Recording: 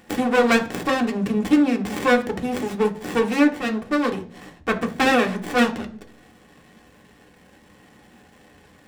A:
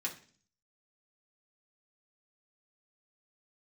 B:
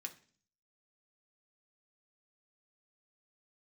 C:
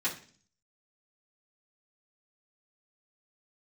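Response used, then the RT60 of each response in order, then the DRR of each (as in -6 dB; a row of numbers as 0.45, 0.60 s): B; 0.45, 0.45, 0.45 s; -3.0, 3.0, -10.0 dB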